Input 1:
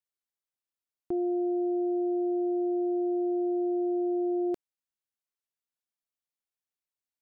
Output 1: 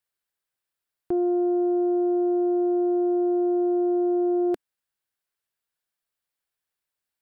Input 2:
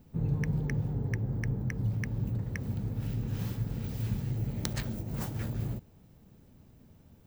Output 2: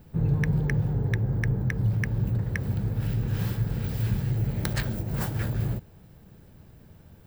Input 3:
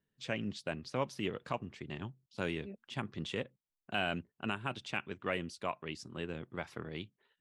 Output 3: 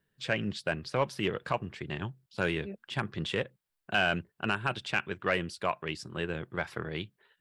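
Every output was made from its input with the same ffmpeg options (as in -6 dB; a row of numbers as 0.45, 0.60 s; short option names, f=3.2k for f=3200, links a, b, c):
-af "equalizer=f=250:t=o:w=0.33:g=-8,equalizer=f=1.6k:t=o:w=0.33:g=5,equalizer=f=6.3k:t=o:w=0.33:g=-5,aeval=exprs='0.224*sin(PI/2*1.78*val(0)/0.224)':c=same,volume=-2dB"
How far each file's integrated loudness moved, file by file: +5.5, +6.0, +6.5 LU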